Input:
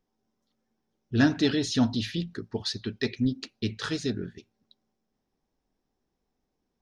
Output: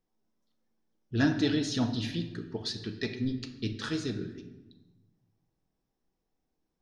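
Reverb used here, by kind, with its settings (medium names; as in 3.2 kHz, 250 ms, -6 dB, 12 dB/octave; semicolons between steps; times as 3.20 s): simulated room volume 540 m³, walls mixed, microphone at 0.66 m; trim -4.5 dB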